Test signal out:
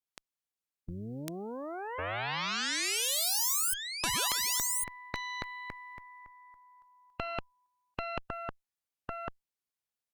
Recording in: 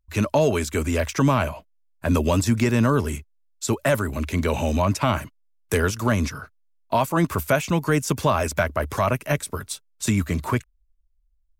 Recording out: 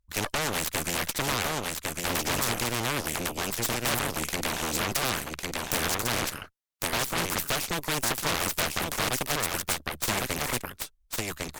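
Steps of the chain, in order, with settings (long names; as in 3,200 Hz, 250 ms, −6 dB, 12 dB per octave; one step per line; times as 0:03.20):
single-tap delay 1,103 ms −4.5 dB
harmonic generator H 3 −13 dB, 8 −14 dB, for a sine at −6 dBFS
every bin compressed towards the loudest bin 2 to 1
level −4.5 dB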